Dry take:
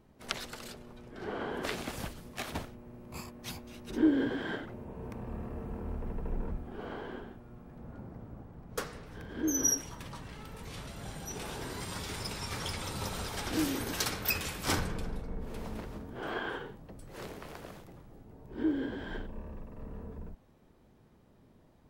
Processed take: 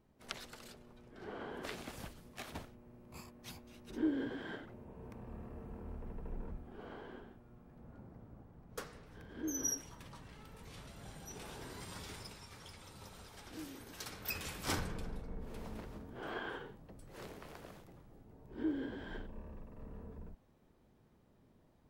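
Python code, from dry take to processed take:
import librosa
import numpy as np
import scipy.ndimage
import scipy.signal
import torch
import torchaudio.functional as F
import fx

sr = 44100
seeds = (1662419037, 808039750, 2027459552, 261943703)

y = fx.gain(x, sr, db=fx.line((12.09, -8.5), (12.51, -16.5), (13.9, -16.5), (14.5, -6.0)))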